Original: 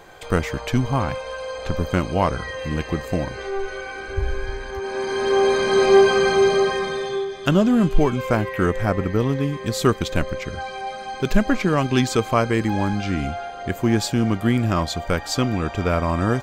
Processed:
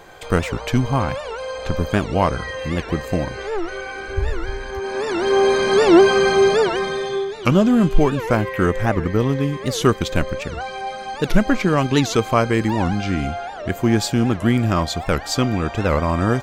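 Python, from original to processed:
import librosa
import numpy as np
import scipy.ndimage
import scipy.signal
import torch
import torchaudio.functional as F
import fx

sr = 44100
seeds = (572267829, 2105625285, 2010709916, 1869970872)

y = fx.record_warp(x, sr, rpm=78.0, depth_cents=250.0)
y = y * librosa.db_to_amplitude(2.0)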